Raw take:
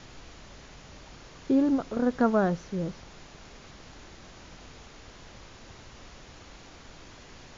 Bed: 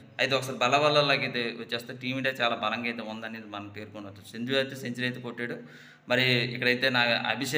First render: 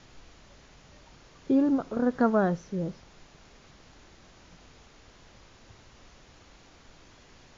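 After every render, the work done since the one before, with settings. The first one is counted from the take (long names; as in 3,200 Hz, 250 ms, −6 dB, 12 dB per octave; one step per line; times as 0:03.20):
noise reduction from a noise print 6 dB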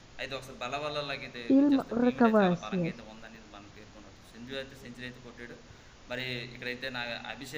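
mix in bed −12 dB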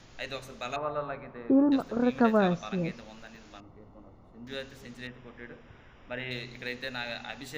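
0:00.76–0:01.72: low-pass with resonance 1,100 Hz, resonance Q 1.9
0:03.60–0:04.47: Savitzky-Golay smoothing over 65 samples
0:05.07–0:06.31: Savitzky-Golay smoothing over 25 samples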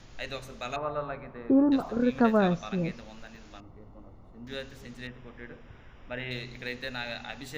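low-shelf EQ 87 Hz +7.5 dB
0:01.83–0:02.09: healed spectral selection 590–1,300 Hz both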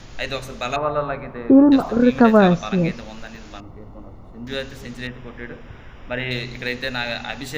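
level +10.5 dB
brickwall limiter −1 dBFS, peak gain reduction 1.5 dB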